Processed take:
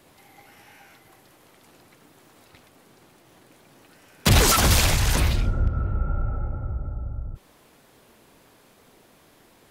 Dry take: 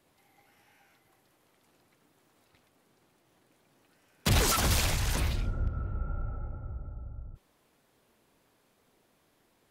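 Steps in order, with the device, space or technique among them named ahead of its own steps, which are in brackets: parallel compression (in parallel at -0.5 dB: compressor, threshold -45 dBFS, peak gain reduction 22 dB); on the sum: gain +7.5 dB

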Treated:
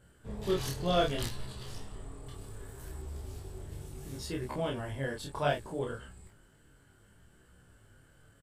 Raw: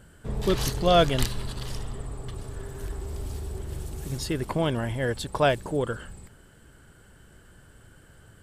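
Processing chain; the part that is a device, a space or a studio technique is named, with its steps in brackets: double-tracked vocal (doubler 29 ms -2.5 dB; chorus 0.67 Hz, delay 16 ms, depth 6.4 ms); 2.26–3.02 high shelf 11000 Hz +11 dB; gain -7 dB

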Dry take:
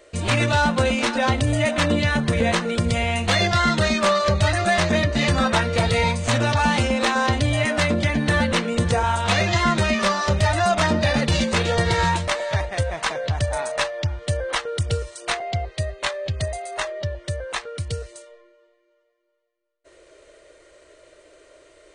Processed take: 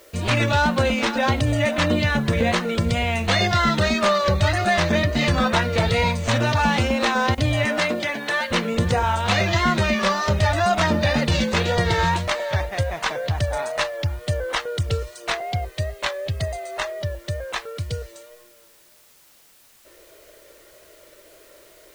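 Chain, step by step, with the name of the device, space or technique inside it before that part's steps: worn cassette (LPF 6900 Hz 12 dB/oct; wow and flutter; level dips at 7.35, 26 ms -16 dB; white noise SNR 32 dB); 7.77–8.5 HPF 210 Hz -> 800 Hz 12 dB/oct

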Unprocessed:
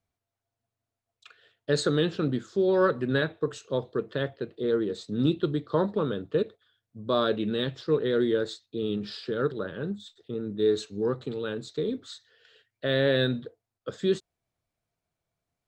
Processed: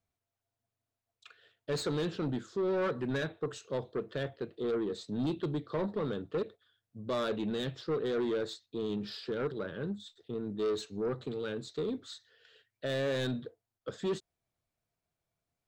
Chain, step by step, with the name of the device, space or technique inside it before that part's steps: saturation between pre-emphasis and de-emphasis (high shelf 3600 Hz +10.5 dB; soft clip -24 dBFS, distortion -10 dB; high shelf 3600 Hz -10.5 dB); gain -3 dB

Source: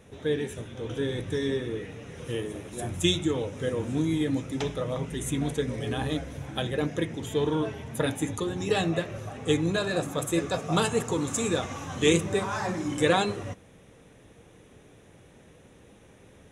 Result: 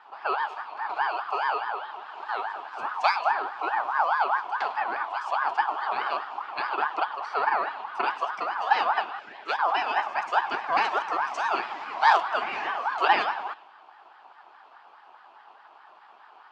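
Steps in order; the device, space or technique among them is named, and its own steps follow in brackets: 9.19–9.59 HPF 430 Hz; narrowing echo 99 ms, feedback 54%, band-pass 2000 Hz, level -14.5 dB; voice changer toy (ring modulator with a swept carrier 1100 Hz, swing 25%, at 4.8 Hz; speaker cabinet 510–3900 Hz, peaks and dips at 520 Hz -10 dB, 840 Hz +7 dB, 1400 Hz -3 dB, 2000 Hz -6 dB, 3700 Hz -5 dB); gain +5 dB

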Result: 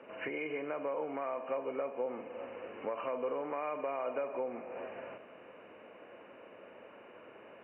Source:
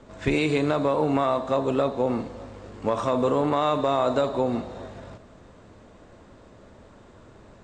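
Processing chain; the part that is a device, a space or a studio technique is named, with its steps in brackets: 4.14–4.77 LPF 5900 Hz 12 dB/oct; hearing aid with frequency lowering (nonlinear frequency compression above 2100 Hz 4:1; compressor 3:1, threshold -36 dBFS, peak gain reduction 13 dB; speaker cabinet 350–6300 Hz, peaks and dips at 510 Hz +5 dB, 1700 Hz +3 dB, 4100 Hz -5 dB); gain -2 dB

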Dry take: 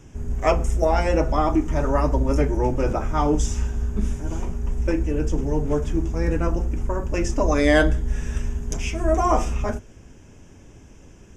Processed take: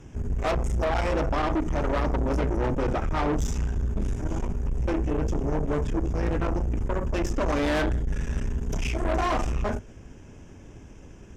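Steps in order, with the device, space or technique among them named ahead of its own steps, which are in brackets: 8.61–9.26 doubler 31 ms -11 dB; tube preamp driven hard (tube stage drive 26 dB, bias 0.6; high shelf 4800 Hz -7.5 dB); gain +4 dB

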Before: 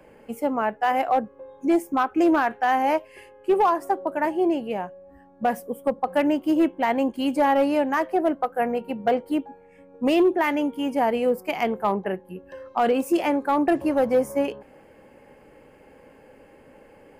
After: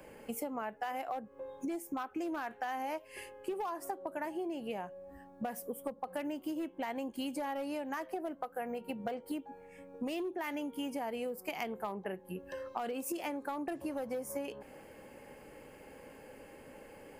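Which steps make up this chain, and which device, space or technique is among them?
serial compression, leveller first (compressor 2:1, threshold -25 dBFS, peak gain reduction 5.5 dB; compressor 5:1, threshold -34 dBFS, peak gain reduction 12 dB); high shelf 3900 Hz +10 dB; gain -2.5 dB

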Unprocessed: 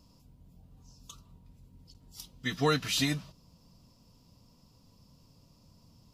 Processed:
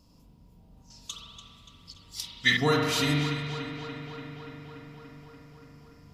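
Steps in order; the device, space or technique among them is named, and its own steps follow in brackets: dub delay into a spring reverb (darkening echo 0.289 s, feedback 77%, low-pass 4700 Hz, level -9 dB; spring tank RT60 1.6 s, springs 41 ms, chirp 65 ms, DRR -1.5 dB); 0.9–2.57 graphic EQ 2000/4000/8000 Hz +11/+10/+7 dB

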